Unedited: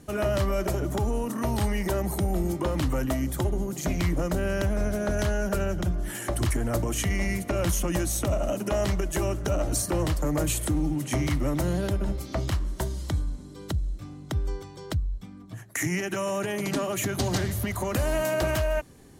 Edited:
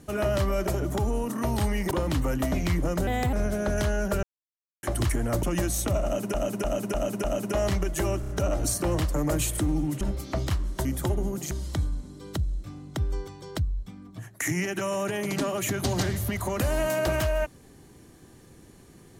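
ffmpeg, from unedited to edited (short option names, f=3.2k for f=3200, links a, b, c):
-filter_complex "[0:a]asplit=18[a][b][c][d][e][f][g][h][i][j][k][l][m][n][o][p][q][r];[a]atrim=end=1.912[s];[b]atrim=start=2.588:end=3.202[t];[c]atrim=start=3.858:end=4.414[u];[d]atrim=start=4.41:end=4.74,asetpts=PTS-STARTPTS,asetrate=56007,aresample=44100,atrim=end_sample=11459,asetpts=PTS-STARTPTS[v];[e]atrim=start=4.736:end=5.64,asetpts=PTS-STARTPTS,afade=t=out:st=0.9:d=0.004:c=hsin[w];[f]atrim=start=5.64:end=6.24,asetpts=PTS-STARTPTS,volume=0[x];[g]atrim=start=6.24:end=6.842,asetpts=PTS-STARTPTS,afade=t=in:d=0.004:c=hsin[y];[h]atrim=start=7.798:end=8.712[z];[i]atrim=start=8.408:end=8.712[aa];[j]atrim=start=8.408:end=8.712[ab];[k]atrim=start=8.408:end=8.712[ac];[l]atrim=start=8.408:end=9.402[ad];[m]atrim=start=9.368:end=9.402[ae];[n]atrim=start=9.368:end=9.402[af];[o]atrim=start=9.368:end=11.092[ag];[p]atrim=start=12.018:end=12.862[ah];[q]atrim=start=3.198:end=3.862[ai];[r]atrim=start=12.858[aj];[s][t]acrossfade=d=0.004:c1=hsin:c2=hsin[ak];[ak][u]acrossfade=d=0.004:c1=hsin:c2=hsin[al];[al][v]acrossfade=d=0.004:c1=hsin:c2=hsin[am];[w][x][y]concat=n=3:v=0:a=1[an];[am][an]acrossfade=d=0.004:c1=hsin:c2=hsin[ao];[ao][z]acrossfade=d=0.004:c1=hsin:c2=hsin[ap];[ap][aa]acrossfade=d=0.004:c1=hsin:c2=hsin[aq];[aq][ab]acrossfade=d=0.004:c1=hsin:c2=hsin[ar];[ar][ac]acrossfade=d=0.004:c1=hsin:c2=hsin[as];[as][ad]acrossfade=d=0.004:c1=hsin:c2=hsin[at];[at][ae]acrossfade=d=0.004:c1=hsin:c2=hsin[au];[au][af]acrossfade=d=0.004:c1=hsin:c2=hsin[av];[av][ag]acrossfade=d=0.004:c1=hsin:c2=hsin[aw];[aw][ah]acrossfade=d=0.004:c1=hsin:c2=hsin[ax];[ax][ai]acrossfade=d=0.004:c1=hsin:c2=hsin[ay];[ay][aj]acrossfade=d=0.004:c1=hsin:c2=hsin"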